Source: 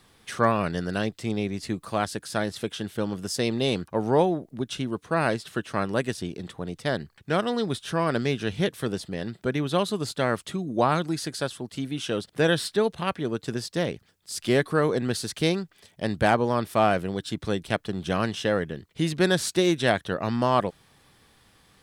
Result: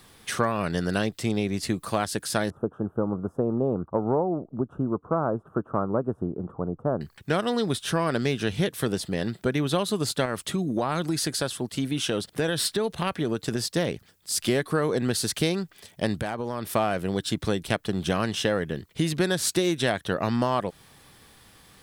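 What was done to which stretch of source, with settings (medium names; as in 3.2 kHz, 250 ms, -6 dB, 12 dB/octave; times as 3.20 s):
2.50–7.01 s: elliptic low-pass 1.3 kHz
10.25–13.75 s: compression 4:1, threshold -25 dBFS
16.19–16.72 s: compression 10:1, threshold -30 dBFS
whole clip: compression, threshold -25 dBFS; treble shelf 11 kHz +9 dB; trim +4.5 dB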